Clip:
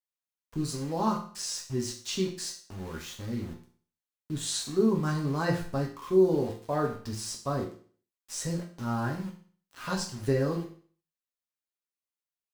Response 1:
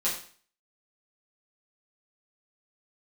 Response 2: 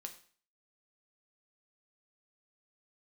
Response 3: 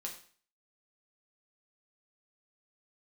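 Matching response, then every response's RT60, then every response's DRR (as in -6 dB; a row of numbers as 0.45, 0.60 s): 3; 0.45, 0.45, 0.45 s; -8.5, 4.5, -0.5 dB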